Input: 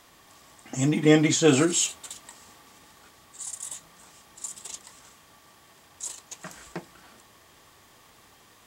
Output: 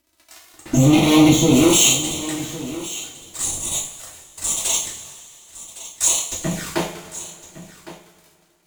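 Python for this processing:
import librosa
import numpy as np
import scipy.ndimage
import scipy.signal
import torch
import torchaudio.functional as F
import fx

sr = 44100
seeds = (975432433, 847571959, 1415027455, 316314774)

p1 = fx.fuzz(x, sr, gain_db=39.0, gate_db=-47.0)
p2 = fx.env_flanger(p1, sr, rest_ms=3.1, full_db=-18.0)
p3 = fx.harmonic_tremolo(p2, sr, hz=1.4, depth_pct=70, crossover_hz=440.0)
p4 = p3 + fx.echo_single(p3, sr, ms=1110, db=-15.5, dry=0)
p5 = fx.rev_double_slope(p4, sr, seeds[0], early_s=0.43, late_s=2.7, knee_db=-18, drr_db=-4.5)
y = p5 * 10.0 ** (-1.0 / 20.0)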